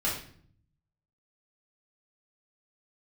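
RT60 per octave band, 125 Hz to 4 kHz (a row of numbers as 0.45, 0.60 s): 1.2, 0.90, 0.60, 0.50, 0.50, 0.45 s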